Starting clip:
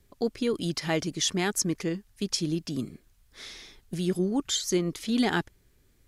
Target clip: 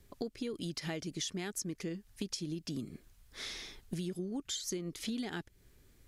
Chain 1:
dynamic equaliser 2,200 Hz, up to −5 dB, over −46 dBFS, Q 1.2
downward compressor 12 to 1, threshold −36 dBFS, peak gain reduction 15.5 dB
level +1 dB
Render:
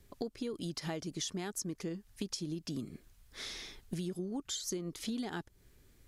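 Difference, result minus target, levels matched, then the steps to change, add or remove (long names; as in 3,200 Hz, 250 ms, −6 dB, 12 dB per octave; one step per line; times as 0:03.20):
1,000 Hz band +3.0 dB
change: dynamic equaliser 1,000 Hz, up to −5 dB, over −46 dBFS, Q 1.2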